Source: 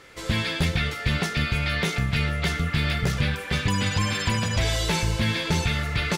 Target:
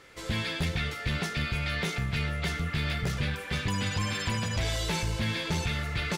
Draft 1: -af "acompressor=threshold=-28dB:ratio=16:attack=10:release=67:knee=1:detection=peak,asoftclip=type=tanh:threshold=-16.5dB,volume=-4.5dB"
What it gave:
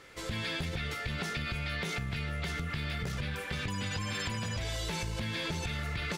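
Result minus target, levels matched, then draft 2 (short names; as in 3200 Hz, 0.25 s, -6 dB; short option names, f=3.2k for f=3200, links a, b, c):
compressor: peak gain reduction +10.5 dB
-af "asoftclip=type=tanh:threshold=-16.5dB,volume=-4.5dB"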